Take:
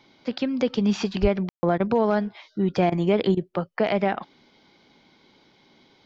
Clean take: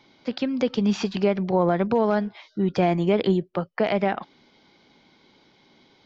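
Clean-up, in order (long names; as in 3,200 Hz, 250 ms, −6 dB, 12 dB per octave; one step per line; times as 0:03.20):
0:01.21–0:01.33: high-pass filter 140 Hz 24 dB per octave
ambience match 0:01.49–0:01.63
repair the gap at 0:01.78/0:02.90/0:03.35, 19 ms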